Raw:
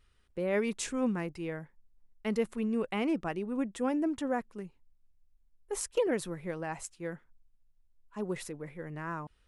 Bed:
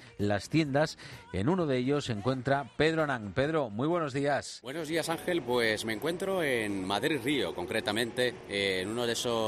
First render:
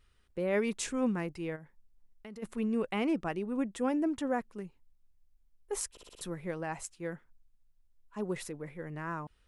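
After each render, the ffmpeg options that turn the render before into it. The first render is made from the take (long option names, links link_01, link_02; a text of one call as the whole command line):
ffmpeg -i in.wav -filter_complex "[0:a]asplit=3[link_01][link_02][link_03];[link_01]afade=type=out:start_time=1.55:duration=0.02[link_04];[link_02]acompressor=threshold=-46dB:ratio=4:attack=3.2:release=140:knee=1:detection=peak,afade=type=in:start_time=1.55:duration=0.02,afade=type=out:start_time=2.42:duration=0.02[link_05];[link_03]afade=type=in:start_time=2.42:duration=0.02[link_06];[link_04][link_05][link_06]amix=inputs=3:normalize=0,asplit=6[link_07][link_08][link_09][link_10][link_11][link_12];[link_07]atrim=end=5.972[link_13];[link_08]atrim=start=5.908:end=5.972[link_14];[link_09]atrim=start=5.908:end=5.972[link_15];[link_10]atrim=start=5.908:end=5.972[link_16];[link_11]atrim=start=5.908:end=5.972[link_17];[link_12]atrim=start=6.208[link_18];[link_13][link_14]acrossfade=duration=0.004:curve1=hsin:curve2=hsin[link_19];[link_19][link_15]acrossfade=duration=0.004:curve1=hsin:curve2=hsin[link_20];[link_20][link_16]acrossfade=duration=0.004:curve1=hsin:curve2=hsin[link_21];[link_21][link_17]acrossfade=duration=0.004:curve1=hsin:curve2=hsin[link_22];[link_22][link_18]acrossfade=duration=0.004:curve1=hsin:curve2=hsin" out.wav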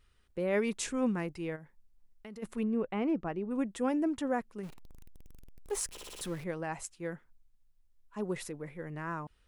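ffmpeg -i in.wav -filter_complex "[0:a]asettb=1/sr,asplit=3[link_01][link_02][link_03];[link_01]atrim=end=2.634[link_04];[link_02]atrim=start=2.63:end=3.51,asetpts=PTS-STARTPTS,afade=type=in:duration=0.004:curve=qsin,afade=type=out:start_time=0.876:duration=0.004:curve=qsin,lowpass=frequency=1200:poles=1[link_05];[link_03]atrim=start=3.506[link_06];[link_04][link_05]acrossfade=duration=0.004:curve1=hsin:curve2=qsin[link_07];[link_07][link_06]acrossfade=duration=0.004:curve1=qsin:curve2=hsin,asettb=1/sr,asplit=3[link_08][link_09][link_10];[link_08]atrim=end=4.634[link_11];[link_09]atrim=start=4.63:end=6.44,asetpts=PTS-STARTPTS,afade=type=in:duration=0.004:curve=qsin,afade=type=out:start_time=1.806:duration=0.004:curve=qsin,aeval=exprs='val(0)+0.5*0.00631*sgn(val(0))':channel_layout=same[link_12];[link_10]atrim=start=6.436[link_13];[link_11][link_12]acrossfade=duration=0.004:curve1=hsin:curve2=qsin[link_14];[link_14][link_13]acrossfade=duration=0.004:curve1=qsin:curve2=hsin" out.wav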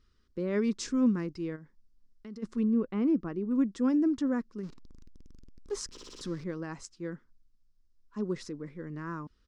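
ffmpeg -i in.wav -af "firequalizer=gain_entry='entry(140,0);entry(250,7);entry(740,-12);entry(1100,0);entry(2500,-8);entry(5100,5);entry(11000,-22)':delay=0.05:min_phase=1" out.wav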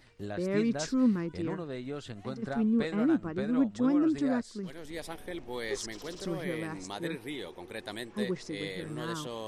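ffmpeg -i in.wav -i bed.wav -filter_complex "[1:a]volume=-9.5dB[link_01];[0:a][link_01]amix=inputs=2:normalize=0" out.wav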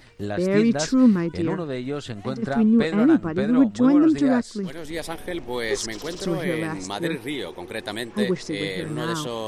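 ffmpeg -i in.wav -af "volume=9.5dB" out.wav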